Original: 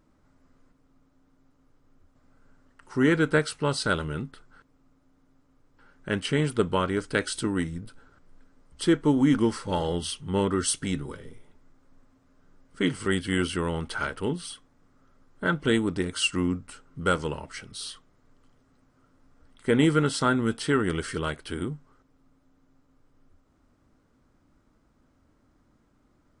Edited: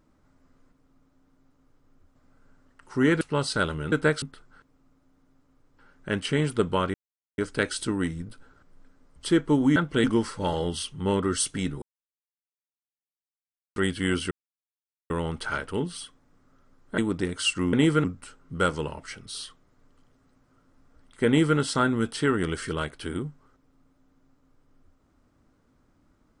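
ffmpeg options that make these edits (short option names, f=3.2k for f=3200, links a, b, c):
-filter_complex "[0:a]asplit=13[a][b][c][d][e][f][g][h][i][j][k][l][m];[a]atrim=end=3.212[n];[b]atrim=start=3.508:end=4.222[o];[c]atrim=start=3.208:end=3.512[p];[d]atrim=start=4.218:end=6.94,asetpts=PTS-STARTPTS,afade=t=out:st=2.718:d=0.004:c=hsin,apad=pad_dur=0.44[q];[e]atrim=start=6.94:end=9.322,asetpts=PTS-STARTPTS,afade=t=in:d=0.004:c=hsin[r];[f]atrim=start=15.468:end=15.752[s];[g]atrim=start=9.318:end=11.1,asetpts=PTS-STARTPTS,afade=t=out:st=1.778:d=0.004:c=hsin[t];[h]atrim=start=11.1:end=13.04,asetpts=PTS-STARTPTS,volume=0[u];[i]atrim=start=13.04:end=13.59,asetpts=PTS-STARTPTS,afade=t=in:d=0.004:c=hsin,afade=t=out:st=0.546:d=0.004:c=hsin,apad=pad_dur=0.79[v];[j]atrim=start=13.59:end=15.472,asetpts=PTS-STARTPTS,afade=t=in:d=0.004:c=hsin[w];[k]atrim=start=15.748:end=16.502[x];[l]atrim=start=19.728:end=20.042[y];[m]atrim=start=16.498[z];[n][o]acrossfade=d=0.004:c1=hsin:c2=hsin[aa];[aa][p]acrossfade=d=0.004:c1=hsin:c2=hsin[ab];[q][r]concat=n=2:v=0:a=1[ac];[ab][ac]acrossfade=d=0.004:c1=hsin:c2=hsin[ad];[ad][s]acrossfade=d=0.004:c1=hsin:c2=hsin[ae];[t][u][v][w]concat=n=4:v=0:a=1[af];[ae][af]acrossfade=d=0.004:c1=hsin:c2=hsin[ag];[ag][x]acrossfade=d=0.004:c1=hsin:c2=hsin[ah];[ah][y]acrossfade=d=0.004:c1=hsin:c2=hsin[ai];[ai][z]acrossfade=d=0.004:c1=hsin:c2=hsin"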